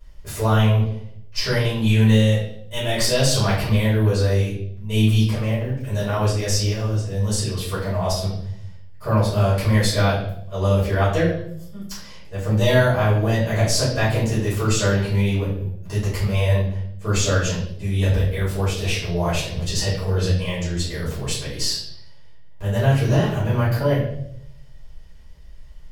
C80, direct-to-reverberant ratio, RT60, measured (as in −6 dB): 6.5 dB, −11.5 dB, 0.70 s